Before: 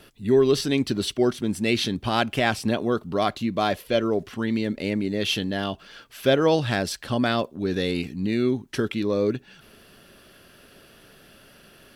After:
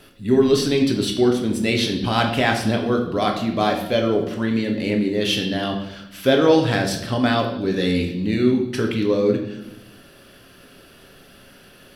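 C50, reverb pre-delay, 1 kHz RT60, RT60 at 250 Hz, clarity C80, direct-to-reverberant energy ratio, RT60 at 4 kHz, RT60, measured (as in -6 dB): 7.0 dB, 4 ms, 0.75 s, 1.3 s, 9.5 dB, 2.0 dB, 0.80 s, 0.90 s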